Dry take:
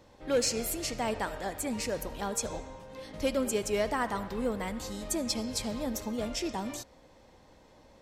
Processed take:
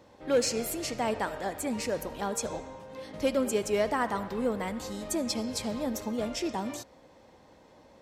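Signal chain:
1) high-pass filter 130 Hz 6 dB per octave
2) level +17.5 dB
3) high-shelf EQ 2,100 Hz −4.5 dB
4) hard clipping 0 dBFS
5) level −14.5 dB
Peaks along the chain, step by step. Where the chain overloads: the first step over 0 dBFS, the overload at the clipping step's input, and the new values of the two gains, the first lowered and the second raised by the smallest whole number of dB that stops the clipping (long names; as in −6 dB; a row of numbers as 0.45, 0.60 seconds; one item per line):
−18.0, −0.5, −2.0, −2.0, −16.5 dBFS
no step passes full scale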